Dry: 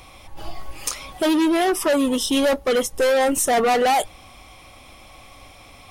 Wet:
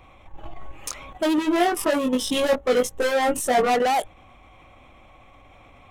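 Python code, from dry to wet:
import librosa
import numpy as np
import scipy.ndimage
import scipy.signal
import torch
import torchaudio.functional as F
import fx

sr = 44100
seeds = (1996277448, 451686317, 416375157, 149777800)

y = fx.wiener(x, sr, points=9)
y = fx.level_steps(y, sr, step_db=10)
y = fx.doubler(y, sr, ms=20.0, db=-3, at=(1.36, 3.75))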